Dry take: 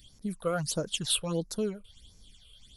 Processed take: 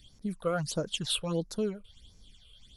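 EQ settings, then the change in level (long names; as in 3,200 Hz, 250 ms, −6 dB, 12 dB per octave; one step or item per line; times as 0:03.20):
high-shelf EQ 9,100 Hz −12 dB
0.0 dB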